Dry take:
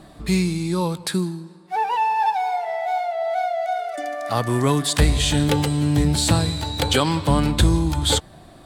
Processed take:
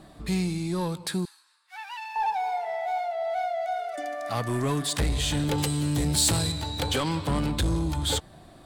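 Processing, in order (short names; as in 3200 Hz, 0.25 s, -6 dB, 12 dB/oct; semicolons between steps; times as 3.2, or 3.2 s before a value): soft clip -15.5 dBFS, distortion -13 dB; 1.25–2.16 HPF 1300 Hz 24 dB/oct; 5.58–6.52 high shelf 4000 Hz +9.5 dB; gain -4.5 dB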